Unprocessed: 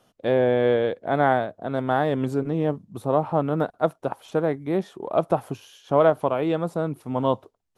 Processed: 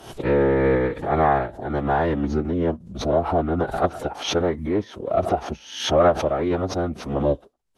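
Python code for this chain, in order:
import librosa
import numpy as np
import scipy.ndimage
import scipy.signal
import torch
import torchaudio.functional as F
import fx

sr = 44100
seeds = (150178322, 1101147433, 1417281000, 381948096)

y = fx.pitch_keep_formants(x, sr, semitones=-10.5)
y = fx.pre_swell(y, sr, db_per_s=95.0)
y = F.gain(torch.from_numpy(y), 1.5).numpy()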